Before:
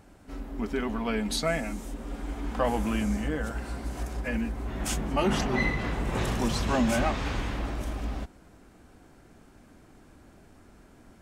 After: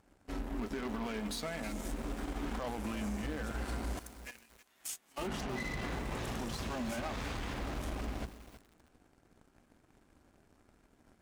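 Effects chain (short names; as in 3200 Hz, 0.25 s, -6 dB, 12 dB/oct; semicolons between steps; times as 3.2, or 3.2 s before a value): notches 50/100/150/200 Hz; 3.99–5.18 differentiator; compressor 5:1, threshold -35 dBFS, peak gain reduction 13 dB; limiter -31 dBFS, peak gain reduction 9 dB; added harmonics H 7 -18 dB, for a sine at -31 dBFS; lo-fi delay 0.32 s, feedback 35%, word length 8-bit, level -12.5 dB; gain +1.5 dB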